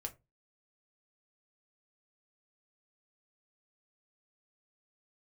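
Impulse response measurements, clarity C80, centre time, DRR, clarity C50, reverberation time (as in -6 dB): 26.5 dB, 6 ms, 3.5 dB, 19.0 dB, 0.25 s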